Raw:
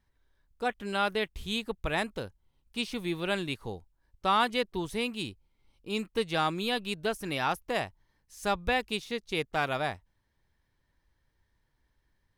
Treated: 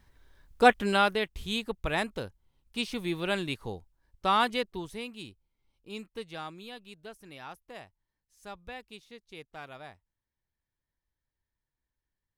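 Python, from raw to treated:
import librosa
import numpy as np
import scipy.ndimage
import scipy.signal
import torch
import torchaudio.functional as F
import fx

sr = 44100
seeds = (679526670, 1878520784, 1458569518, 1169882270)

y = fx.gain(x, sr, db=fx.line((0.7, 11.5), (1.19, 0.5), (4.47, 0.5), (5.06, -8.0), (5.93, -8.0), (6.8, -15.0)))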